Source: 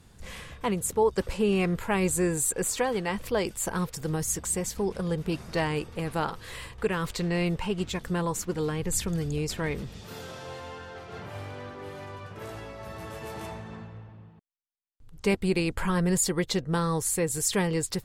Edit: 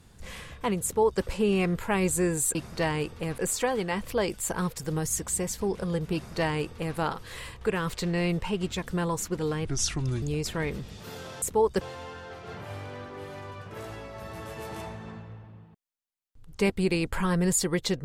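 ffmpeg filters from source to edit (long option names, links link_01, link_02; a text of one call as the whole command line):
ffmpeg -i in.wav -filter_complex "[0:a]asplit=7[link_01][link_02][link_03][link_04][link_05][link_06][link_07];[link_01]atrim=end=2.552[link_08];[link_02]atrim=start=5.308:end=6.142[link_09];[link_03]atrim=start=2.548:end=8.824[link_10];[link_04]atrim=start=8.82:end=9.26,asetpts=PTS-STARTPTS,asetrate=33957,aresample=44100[link_11];[link_05]atrim=start=9.256:end=10.462[link_12];[link_06]atrim=start=0.838:end=1.232[link_13];[link_07]atrim=start=10.458[link_14];[link_08][link_09]acrossfade=duration=0.004:curve1=hsin:curve2=hsin[link_15];[link_15][link_10]acrossfade=duration=0.004:curve1=hsin:curve2=hsin[link_16];[link_16][link_11]acrossfade=duration=0.004:curve1=hsin:curve2=hsin[link_17];[link_17][link_12]acrossfade=duration=0.004:curve1=hsin:curve2=hsin[link_18];[link_18][link_13]acrossfade=duration=0.004:curve1=hsin:curve2=hsin[link_19];[link_19][link_14]acrossfade=duration=0.004:curve1=hsin:curve2=hsin" out.wav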